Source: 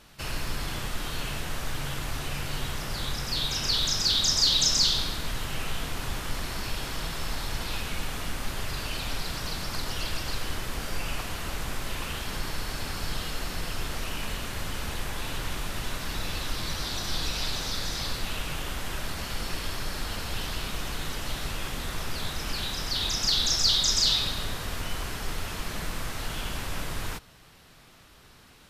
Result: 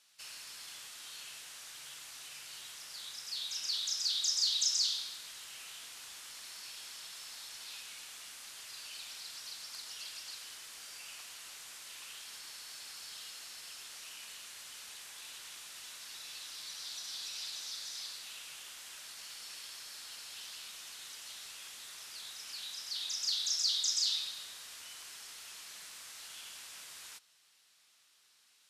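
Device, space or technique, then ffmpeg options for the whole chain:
piezo pickup straight into a mixer: -af "lowpass=8.5k,aderivative,volume=-4dB"

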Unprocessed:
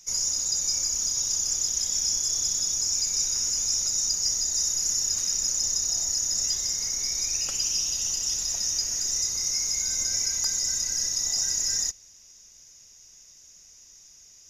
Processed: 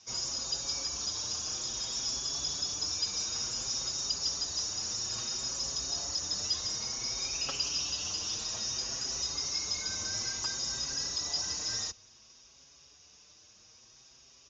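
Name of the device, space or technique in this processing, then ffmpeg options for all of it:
barber-pole flanger into a guitar amplifier: -filter_complex "[0:a]asplit=2[a][b];[b]adelay=5.9,afreqshift=0.58[c];[a][c]amix=inputs=2:normalize=1,asoftclip=type=tanh:threshold=-23dB,highpass=76,equalizer=f=170:t=q:w=4:g=-5,equalizer=f=1.1k:t=q:w=4:g=4,equalizer=f=2k:t=q:w=4:g=-8,lowpass=f=4.5k:w=0.5412,lowpass=f=4.5k:w=1.3066,volume=7dB"

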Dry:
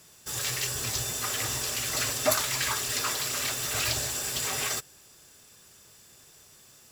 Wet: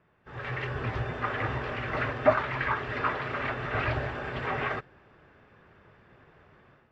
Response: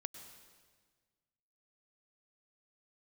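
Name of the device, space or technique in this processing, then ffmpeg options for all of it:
action camera in a waterproof case: -af "lowpass=f=2k:w=0.5412,lowpass=f=2k:w=1.3066,dynaudnorm=f=280:g=3:m=11dB,volume=-5dB" -ar 22050 -c:a aac -b:a 48k

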